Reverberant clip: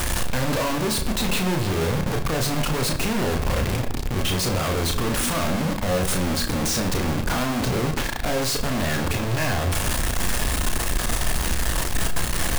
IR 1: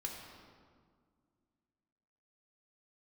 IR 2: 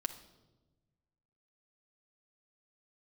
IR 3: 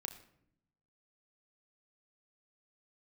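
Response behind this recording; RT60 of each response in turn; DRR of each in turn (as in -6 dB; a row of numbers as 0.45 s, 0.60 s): 3; 1.9 s, 1.1 s, 0.70 s; -1.0 dB, 4.0 dB, 3.5 dB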